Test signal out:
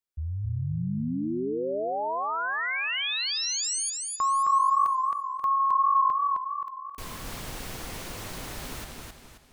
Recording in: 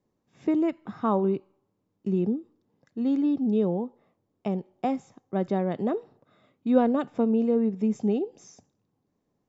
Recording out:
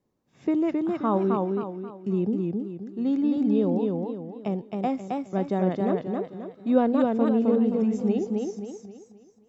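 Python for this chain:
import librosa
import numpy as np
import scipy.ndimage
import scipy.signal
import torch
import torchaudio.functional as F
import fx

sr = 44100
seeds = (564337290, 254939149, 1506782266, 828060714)

y = fx.echo_warbled(x, sr, ms=265, feedback_pct=39, rate_hz=2.8, cents=82, wet_db=-3.0)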